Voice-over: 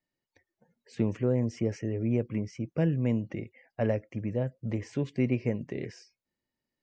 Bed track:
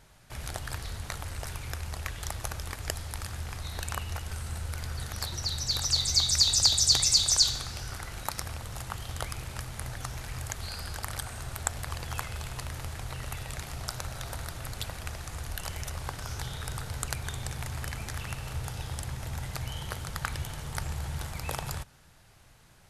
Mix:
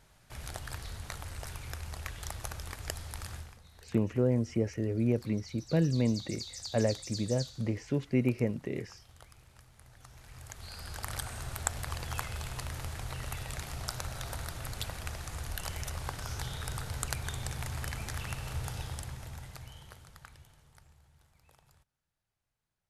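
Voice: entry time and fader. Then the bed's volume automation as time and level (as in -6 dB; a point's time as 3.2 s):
2.95 s, -0.5 dB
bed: 3.36 s -4.5 dB
3.61 s -20 dB
9.84 s -20 dB
11.14 s -1.5 dB
18.77 s -1.5 dB
21.12 s -29.5 dB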